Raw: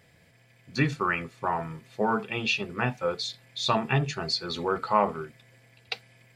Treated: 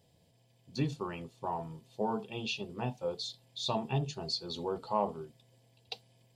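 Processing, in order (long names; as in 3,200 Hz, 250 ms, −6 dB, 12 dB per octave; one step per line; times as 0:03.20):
flat-topped bell 1,700 Hz −15.5 dB 1.2 octaves
level −6.5 dB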